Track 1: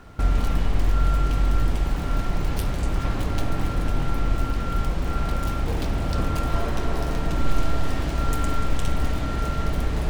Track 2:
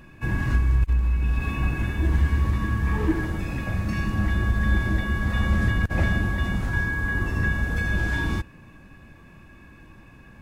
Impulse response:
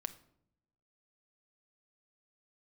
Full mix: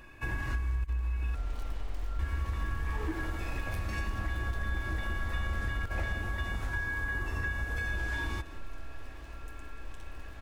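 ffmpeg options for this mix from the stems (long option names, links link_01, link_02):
-filter_complex "[0:a]acrossover=split=480[link_01][link_02];[link_02]acompressor=threshold=-35dB:ratio=3[link_03];[link_01][link_03]amix=inputs=2:normalize=0,adelay=1150,volume=-8.5dB,afade=type=out:start_time=6.11:duration=0.25:silence=0.298538[link_04];[1:a]volume=-1dB,asplit=3[link_05][link_06][link_07];[link_05]atrim=end=1.35,asetpts=PTS-STARTPTS,afade=type=out:start_time=1.346:duration=0.004:curve=hsin[link_08];[link_06]atrim=start=1.35:end=2.19,asetpts=PTS-STARTPTS,volume=0[link_09];[link_07]atrim=start=2.19,asetpts=PTS-STARTPTS,afade=type=in:duration=0.004:curve=hsin[link_10];[link_08][link_09][link_10]concat=n=3:v=0:a=1,asplit=2[link_11][link_12];[link_12]volume=-19.5dB,aecho=0:1:178:1[link_13];[link_04][link_11][link_13]amix=inputs=3:normalize=0,equalizer=frequency=170:width_type=o:width=1.3:gain=-15,acompressor=threshold=-31dB:ratio=3"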